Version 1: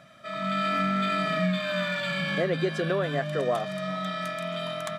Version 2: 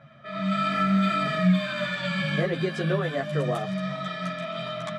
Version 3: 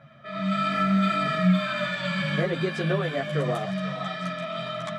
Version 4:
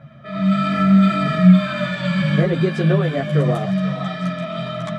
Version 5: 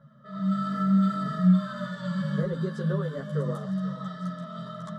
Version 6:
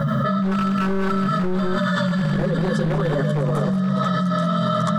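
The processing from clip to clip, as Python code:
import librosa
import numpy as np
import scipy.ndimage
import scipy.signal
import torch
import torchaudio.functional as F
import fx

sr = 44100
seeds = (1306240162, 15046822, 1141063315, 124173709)

y1 = fx.peak_eq(x, sr, hz=130.0, db=10.5, octaves=0.72)
y1 = fx.env_lowpass(y1, sr, base_hz=2600.0, full_db=-21.0)
y1 = fx.ensemble(y1, sr)
y1 = y1 * 10.0 ** (3.0 / 20.0)
y2 = fx.echo_stepped(y1, sr, ms=484, hz=970.0, octaves=1.4, feedback_pct=70, wet_db=-5.5)
y3 = fx.low_shelf(y2, sr, hz=400.0, db=10.5)
y3 = y3 * 10.0 ** (2.0 / 20.0)
y4 = fx.fixed_phaser(y3, sr, hz=480.0, stages=8)
y4 = y4 * 10.0 ** (-9.0 / 20.0)
y5 = np.minimum(y4, 2.0 * 10.0 ** (-24.5 / 20.0) - y4)
y5 = y5 + 10.0 ** (-8.5 / 20.0) * np.pad(y5, (int(189 * sr / 1000.0), 0))[:len(y5)]
y5 = fx.env_flatten(y5, sr, amount_pct=100)
y5 = y5 * 10.0 ** (-3.0 / 20.0)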